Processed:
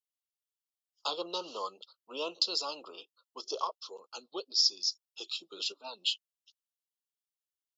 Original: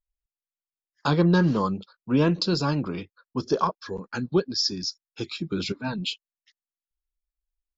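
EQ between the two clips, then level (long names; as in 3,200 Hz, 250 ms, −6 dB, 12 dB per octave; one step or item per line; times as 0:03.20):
high-pass filter 500 Hz 24 dB per octave
elliptic band-stop filter 1,300–2,800 Hz, stop band 40 dB
high shelf with overshoot 1,700 Hz +6.5 dB, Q 1.5
−7.0 dB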